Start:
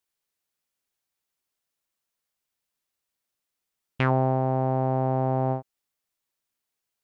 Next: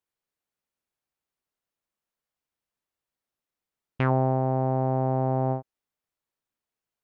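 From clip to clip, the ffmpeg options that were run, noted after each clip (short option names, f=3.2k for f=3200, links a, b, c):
-af "highshelf=f=2.4k:g=-10"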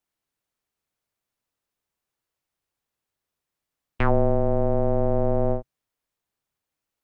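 -af "afreqshift=-150,volume=4dB"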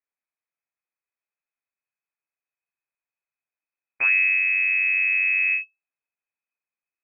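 -af "asubboost=boost=2.5:cutoff=200,lowpass=f=2.2k:t=q:w=0.5098,lowpass=f=2.2k:t=q:w=0.6013,lowpass=f=2.2k:t=q:w=0.9,lowpass=f=2.2k:t=q:w=2.563,afreqshift=-2600,volume=-7.5dB"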